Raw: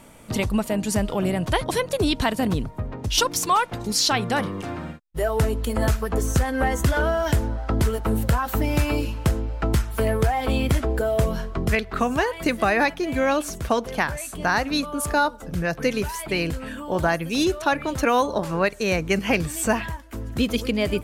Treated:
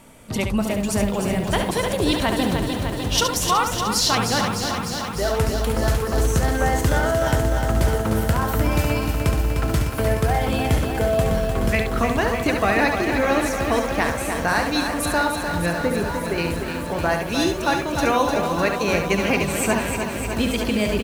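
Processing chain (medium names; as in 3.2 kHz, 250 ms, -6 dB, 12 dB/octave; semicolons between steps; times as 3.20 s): de-hum 61.94 Hz, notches 29; 15.70–16.38 s: resonant high shelf 2 kHz -10.5 dB, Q 1.5; delay 70 ms -6.5 dB; bit-crushed delay 302 ms, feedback 80%, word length 7-bit, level -6.5 dB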